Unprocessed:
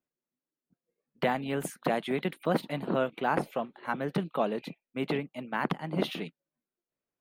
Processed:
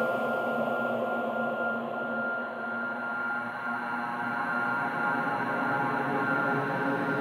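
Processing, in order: whistle 1.4 kHz -36 dBFS; Paulstretch 17×, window 0.50 s, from 3.58 s; trim +3.5 dB

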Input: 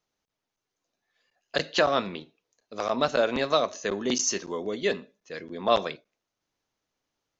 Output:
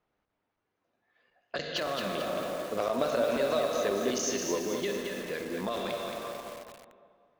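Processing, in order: plate-style reverb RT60 2.1 s, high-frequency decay 0.95×, DRR 7 dB; level-controlled noise filter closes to 2 kHz, open at -21 dBFS; peak limiter -17.5 dBFS, peak gain reduction 9 dB; compression 3:1, threshold -39 dBFS, peak gain reduction 12 dB; 2.16–4.58 s: peaking EQ 570 Hz +6.5 dB 1.2 oct; feedback echo behind a band-pass 77 ms, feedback 80%, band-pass 490 Hz, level -20 dB; dynamic bell 830 Hz, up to -4 dB, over -53 dBFS, Q 3.6; one-sided clip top -27 dBFS; bit-crushed delay 221 ms, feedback 55%, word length 8-bit, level -4 dB; trim +5.5 dB

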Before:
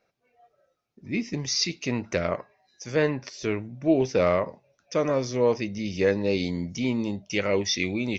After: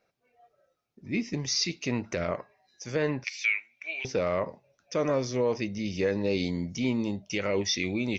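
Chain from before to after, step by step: 3.24–4.05 s: resonant high-pass 2.3 kHz, resonance Q 9.8; peak limiter -15 dBFS, peak gain reduction 6.5 dB; trim -1.5 dB

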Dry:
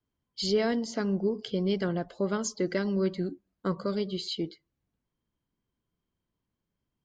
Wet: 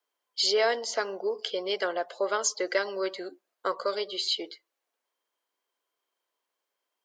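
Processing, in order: high-pass 500 Hz 24 dB/octave; trim +7 dB

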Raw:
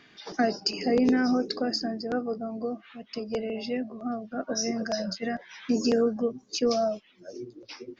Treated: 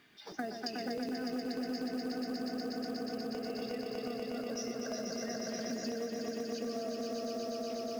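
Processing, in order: echo with a slow build-up 121 ms, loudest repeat 5, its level -4 dB; companded quantiser 6-bit; compression, threshold -27 dBFS, peak gain reduction 12.5 dB; trim -8 dB

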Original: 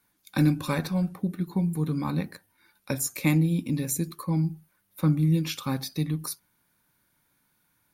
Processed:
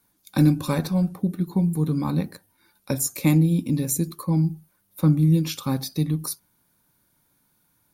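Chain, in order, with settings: peaking EQ 2 kHz -7 dB 1.6 oct; trim +4.5 dB

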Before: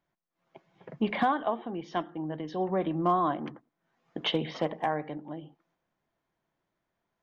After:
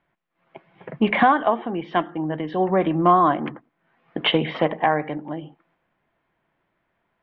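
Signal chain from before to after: low-pass 2.7 kHz 24 dB/octave; treble shelf 2 kHz +9 dB; trim +8.5 dB

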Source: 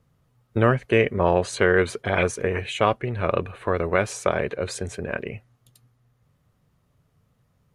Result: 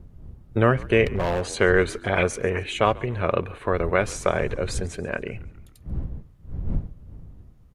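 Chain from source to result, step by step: wind noise 82 Hz -34 dBFS; frequency-shifting echo 139 ms, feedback 52%, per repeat -58 Hz, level -22 dB; 1.05–1.49 s: hard clipper -20 dBFS, distortion -14 dB

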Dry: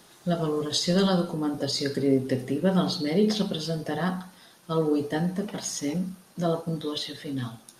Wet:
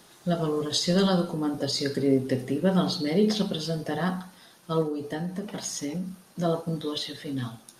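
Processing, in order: 4.82–6.25 s: compression 6:1, threshold -28 dBFS, peak gain reduction 8.5 dB

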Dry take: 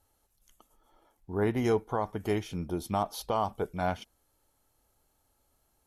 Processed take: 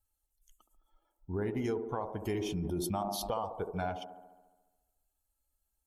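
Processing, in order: expander on every frequency bin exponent 1.5; compression 5:1, threshold -41 dBFS, peak gain reduction 16 dB; feedback echo behind a band-pass 70 ms, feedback 67%, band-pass 440 Hz, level -6 dB; 2.24–3.34 s: decay stretcher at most 23 dB/s; trim +7.5 dB

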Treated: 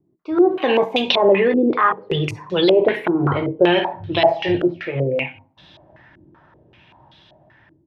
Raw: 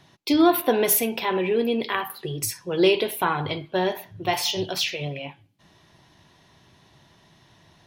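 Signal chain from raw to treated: Doppler pass-by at 2.81 s, 22 m/s, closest 14 m; level rider gain up to 15.5 dB; on a send at -11 dB: reverberation RT60 0.45 s, pre-delay 3 ms; on the sum: loudness maximiser +10 dB; step-sequenced low-pass 5.2 Hz 340–3700 Hz; trim -8 dB

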